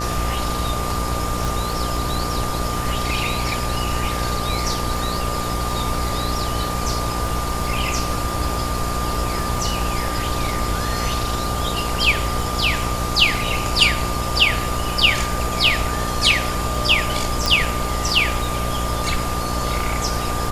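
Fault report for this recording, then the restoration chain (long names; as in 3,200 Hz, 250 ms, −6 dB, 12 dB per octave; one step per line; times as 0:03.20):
mains buzz 60 Hz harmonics 18 −26 dBFS
surface crackle 47 per second −30 dBFS
whistle 1,200 Hz −27 dBFS
0:01.45: click
0:17.46: click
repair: click removal
notch filter 1,200 Hz, Q 30
hum removal 60 Hz, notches 18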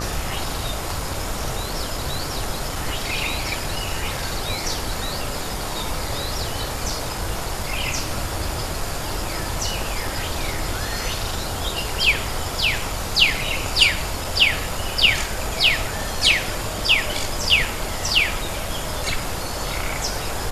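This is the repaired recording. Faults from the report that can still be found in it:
none of them is left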